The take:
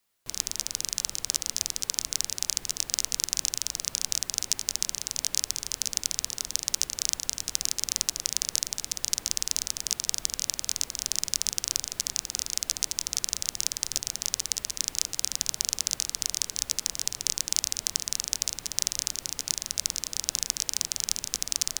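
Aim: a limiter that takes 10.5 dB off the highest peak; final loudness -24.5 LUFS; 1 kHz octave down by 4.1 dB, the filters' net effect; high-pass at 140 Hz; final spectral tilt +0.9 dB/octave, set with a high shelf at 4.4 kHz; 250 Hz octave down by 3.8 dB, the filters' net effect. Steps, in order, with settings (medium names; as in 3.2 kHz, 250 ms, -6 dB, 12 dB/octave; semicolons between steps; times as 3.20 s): high-pass 140 Hz; peaking EQ 250 Hz -4 dB; peaking EQ 1 kHz -5.5 dB; treble shelf 4.4 kHz +4 dB; trim +7.5 dB; peak limiter -1 dBFS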